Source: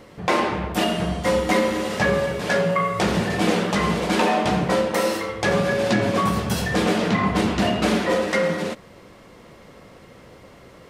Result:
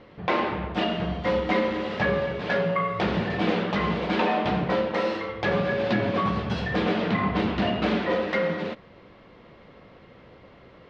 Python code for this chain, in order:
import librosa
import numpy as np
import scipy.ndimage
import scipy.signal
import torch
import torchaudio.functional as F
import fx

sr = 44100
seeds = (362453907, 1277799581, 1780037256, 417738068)

y = scipy.signal.sosfilt(scipy.signal.butter(4, 4000.0, 'lowpass', fs=sr, output='sos'), x)
y = y * librosa.db_to_amplitude(-4.0)